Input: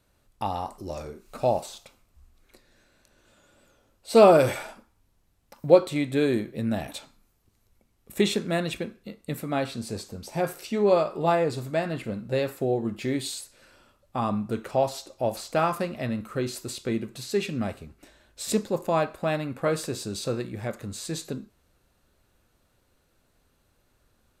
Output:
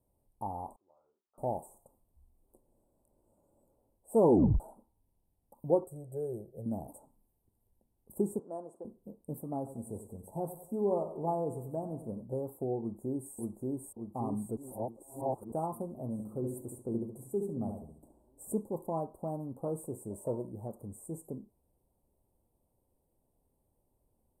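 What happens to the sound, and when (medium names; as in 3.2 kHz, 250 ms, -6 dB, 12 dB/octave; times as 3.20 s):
0.76–1.38 s: band-pass filter 1.4 kHz, Q 8.9
4.18 s: tape stop 0.42 s
5.84–6.66 s: static phaser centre 1 kHz, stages 6
8.39–8.85 s: band-pass 510–5300 Hz
9.57–12.25 s: feedback delay 93 ms, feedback 40%, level -11.5 dB
12.80–13.34 s: echo throw 580 ms, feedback 60%, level -0.5 dB
14.57–15.52 s: reverse
16.12–18.52 s: filtered feedback delay 70 ms, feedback 38%, low-pass 3.2 kHz, level -5 dB
20.10–20.52 s: small resonant body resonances 620/920 Hz, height 16 dB, ringing for 40 ms
whole clip: Chebyshev band-stop 930–8700 Hz, order 4; dynamic bell 580 Hz, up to -5 dB, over -36 dBFS, Q 3.1; trim -7.5 dB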